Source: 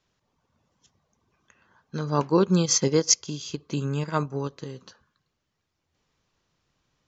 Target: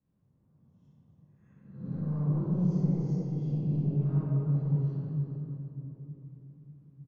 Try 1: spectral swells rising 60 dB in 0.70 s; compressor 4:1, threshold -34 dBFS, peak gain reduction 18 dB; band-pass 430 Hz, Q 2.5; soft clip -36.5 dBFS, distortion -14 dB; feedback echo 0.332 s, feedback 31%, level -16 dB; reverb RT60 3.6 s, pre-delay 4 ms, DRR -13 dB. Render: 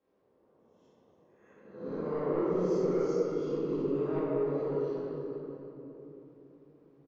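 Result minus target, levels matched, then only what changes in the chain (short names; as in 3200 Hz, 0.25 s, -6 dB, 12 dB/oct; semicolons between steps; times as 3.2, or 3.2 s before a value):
500 Hz band +16.0 dB
change: band-pass 140 Hz, Q 2.5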